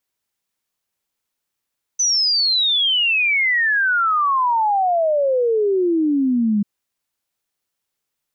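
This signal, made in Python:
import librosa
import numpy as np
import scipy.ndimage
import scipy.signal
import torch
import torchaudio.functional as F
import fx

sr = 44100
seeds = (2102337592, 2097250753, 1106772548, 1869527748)

y = fx.ess(sr, length_s=4.64, from_hz=6100.0, to_hz=200.0, level_db=-14.5)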